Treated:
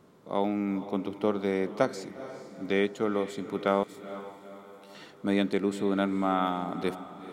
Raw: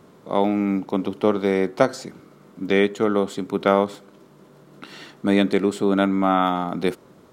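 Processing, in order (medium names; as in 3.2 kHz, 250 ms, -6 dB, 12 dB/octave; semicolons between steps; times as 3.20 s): 3.83–4.95 s: differentiator; on a send: echo that smears into a reverb 458 ms, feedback 48%, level -13.5 dB; on the sum: trim -8 dB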